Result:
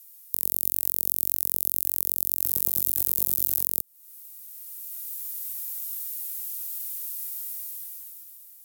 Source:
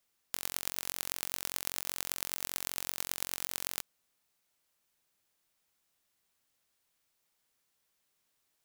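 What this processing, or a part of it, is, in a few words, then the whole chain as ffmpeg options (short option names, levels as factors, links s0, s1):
FM broadcast chain: -filter_complex "[0:a]highpass=76,dynaudnorm=f=150:g=13:m=6.31,acrossover=split=430|1100[s0][s1][s2];[s0]acompressor=threshold=0.002:ratio=4[s3];[s1]acompressor=threshold=0.001:ratio=4[s4];[s2]acompressor=threshold=0.00501:ratio=4[s5];[s3][s4][s5]amix=inputs=3:normalize=0,aemphasis=mode=production:type=50fm,alimiter=limit=0.355:level=0:latency=1:release=255,asoftclip=type=hard:threshold=0.251,lowpass=f=15000:w=0.5412,lowpass=f=15000:w=1.3066,aemphasis=mode=production:type=50fm,asettb=1/sr,asplit=3[s6][s7][s8];[s6]atrim=end=2.444[s9];[s7]atrim=start=2.44:end=3.62,asetpts=PTS-STARTPTS,afade=t=in:d=0.004:c=qsin,afade=t=out:st=1.176:d=0.004:c=qsin,asplit=2[s10][s11];[s11]adelay=15,volume=0.531[s12];[s10][s12]amix=inputs=2:normalize=0,atrim=end_sample=52038[s13];[s8]atrim=start=3.616[s14];[s9][s13]acrossfade=d=0.004:c1=hsin:c2=qsin[s15];[s15][s14]acrossfade=d=0.004:c1=qsin:c2=hsin,volume=1.58"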